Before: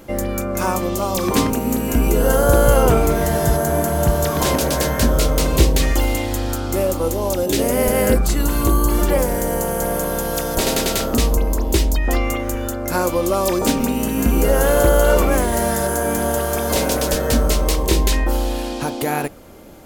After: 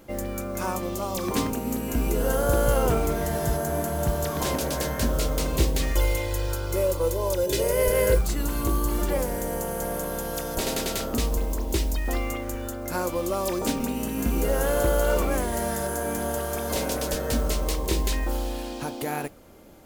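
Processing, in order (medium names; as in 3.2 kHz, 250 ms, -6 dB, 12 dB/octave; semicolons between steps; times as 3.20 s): modulation noise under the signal 23 dB; 5.95–8.21 s: comb 2 ms, depth 88%; trim -8.5 dB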